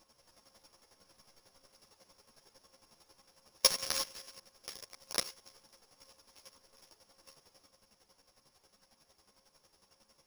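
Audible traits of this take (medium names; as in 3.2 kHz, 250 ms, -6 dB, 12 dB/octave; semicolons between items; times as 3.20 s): a buzz of ramps at a fixed pitch in blocks of 8 samples; chopped level 11 Hz, depth 65%, duty 25%; aliases and images of a low sample rate 16 kHz, jitter 0%; a shimmering, thickened sound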